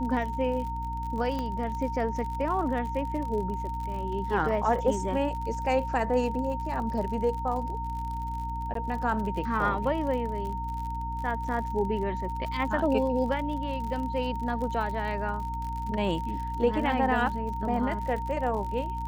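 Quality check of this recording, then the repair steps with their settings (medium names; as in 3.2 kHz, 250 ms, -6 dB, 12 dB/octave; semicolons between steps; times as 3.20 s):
crackle 56 per s -35 dBFS
hum 60 Hz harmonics 5 -35 dBFS
whine 920 Hz -33 dBFS
1.39 s: pop -20 dBFS
8.74–8.75 s: dropout 13 ms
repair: de-click; de-hum 60 Hz, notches 5; band-stop 920 Hz, Q 30; interpolate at 8.74 s, 13 ms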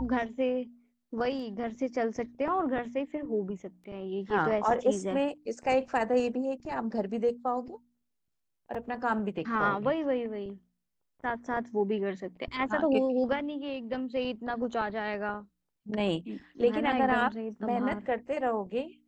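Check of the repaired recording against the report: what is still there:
1.39 s: pop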